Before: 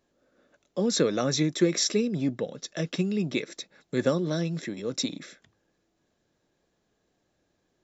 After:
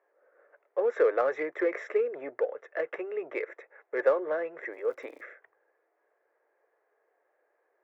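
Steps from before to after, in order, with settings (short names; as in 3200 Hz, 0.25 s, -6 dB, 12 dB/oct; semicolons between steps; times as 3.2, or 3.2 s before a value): elliptic band-pass 440–2000 Hz, stop band 40 dB; in parallel at -9.5 dB: soft clip -32.5 dBFS, distortion -7 dB; 4.72–5.21 on the sum: crackle 130/s -55 dBFS; gain +2.5 dB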